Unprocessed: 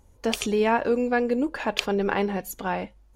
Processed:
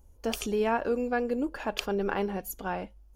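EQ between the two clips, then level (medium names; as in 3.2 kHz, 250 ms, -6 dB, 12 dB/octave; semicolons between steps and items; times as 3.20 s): ten-band graphic EQ 125 Hz -10 dB, 250 Hz -5 dB, 500 Hz -5 dB, 1 kHz -7 dB, 2 kHz -11 dB, 4 kHz -5 dB, 8 kHz -7 dB; dynamic bell 1.4 kHz, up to +4 dB, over -46 dBFS, Q 1.3; peaking EQ 3.8 kHz -3.5 dB 0.29 oct; +2.5 dB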